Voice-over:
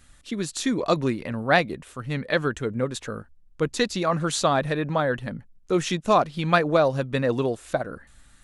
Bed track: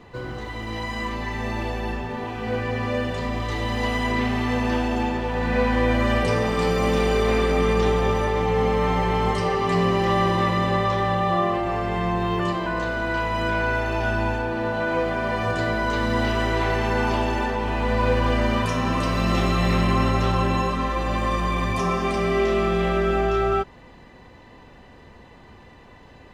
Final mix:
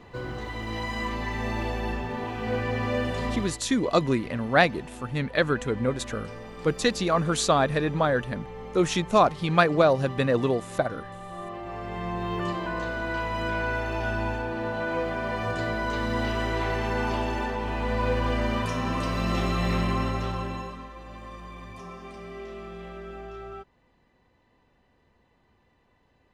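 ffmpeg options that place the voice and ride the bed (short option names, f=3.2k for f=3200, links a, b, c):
-filter_complex "[0:a]adelay=3050,volume=0dB[a];[1:a]volume=12dB,afade=t=out:st=3.3:d=0.29:silence=0.141254,afade=t=in:st=11.29:d=1.22:silence=0.199526,afade=t=out:st=19.78:d=1.12:silence=0.211349[b];[a][b]amix=inputs=2:normalize=0"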